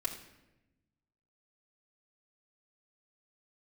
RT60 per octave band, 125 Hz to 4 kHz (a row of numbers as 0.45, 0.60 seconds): 1.7, 1.5, 1.1, 0.85, 0.90, 0.70 seconds